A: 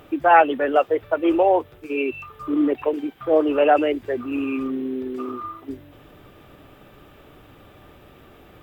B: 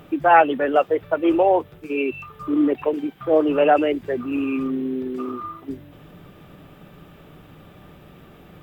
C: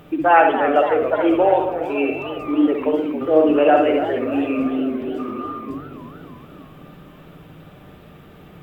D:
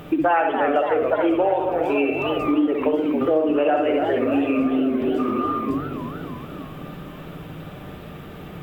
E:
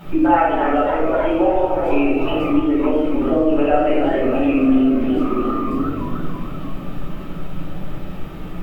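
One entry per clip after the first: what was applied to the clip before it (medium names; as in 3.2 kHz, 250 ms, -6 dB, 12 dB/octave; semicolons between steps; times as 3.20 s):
peaking EQ 170 Hz +12.5 dB 0.48 oct
reverberation, pre-delay 57 ms, DRR 3.5 dB; modulated delay 283 ms, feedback 63%, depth 208 cents, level -10.5 dB
compression 5:1, threshold -24 dBFS, peak gain reduction 14.5 dB; trim +6.5 dB
added noise brown -39 dBFS; simulated room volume 620 m³, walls furnished, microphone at 7.8 m; trim -8 dB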